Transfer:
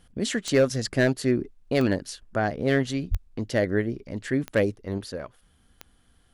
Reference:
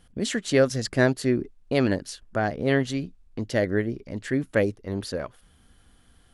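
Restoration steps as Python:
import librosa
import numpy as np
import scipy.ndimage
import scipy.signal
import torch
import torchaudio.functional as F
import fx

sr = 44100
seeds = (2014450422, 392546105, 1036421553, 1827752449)

y = fx.fix_declip(x, sr, threshold_db=-12.5)
y = fx.fix_declick_ar(y, sr, threshold=10.0)
y = fx.highpass(y, sr, hz=140.0, slope=24, at=(3.1, 3.22), fade=0.02)
y = fx.fix_level(y, sr, at_s=4.98, step_db=4.0)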